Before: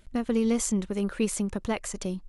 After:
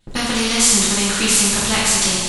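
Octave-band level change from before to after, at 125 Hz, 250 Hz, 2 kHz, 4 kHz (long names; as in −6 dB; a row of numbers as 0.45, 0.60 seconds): +7.5, +5.0, +20.0, +25.5 decibels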